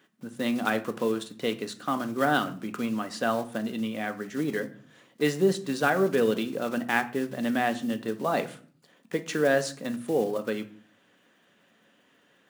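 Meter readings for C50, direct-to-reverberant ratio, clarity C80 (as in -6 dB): 15.0 dB, 8.0 dB, 19.5 dB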